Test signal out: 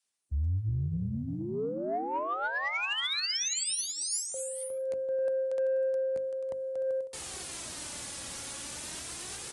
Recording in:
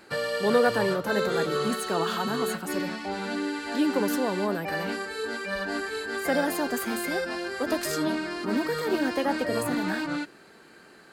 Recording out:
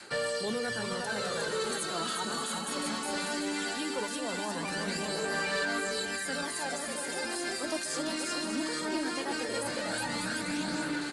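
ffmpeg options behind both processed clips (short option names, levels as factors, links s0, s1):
-filter_complex "[0:a]highpass=75,aemphasis=mode=production:type=75fm,bandreject=f=50:t=h:w=6,bandreject=f=100:t=h:w=6,bandreject=f=150:t=h:w=6,bandreject=f=200:t=h:w=6,bandreject=f=250:t=h:w=6,bandreject=f=300:t=h:w=6,adynamicequalizer=threshold=0.00891:dfrequency=380:dqfactor=1.8:tfrequency=380:tqfactor=1.8:attack=5:release=100:ratio=0.375:range=2:mode=cutabove:tftype=bell,acrossover=split=200[s0][s1];[s1]alimiter=limit=0.158:level=0:latency=1:release=259[s2];[s0][s2]amix=inputs=2:normalize=0,aecho=1:1:360|594|746.1|845|909.2:0.631|0.398|0.251|0.158|0.1,areverse,acompressor=threshold=0.0178:ratio=8,areverse,aphaser=in_gain=1:out_gain=1:delay=3.6:decay=0.41:speed=0.18:type=sinusoidal,asoftclip=type=tanh:threshold=0.0447,acontrast=22,aresample=22050,aresample=44100" -ar 48000 -c:a libopus -b:a 48k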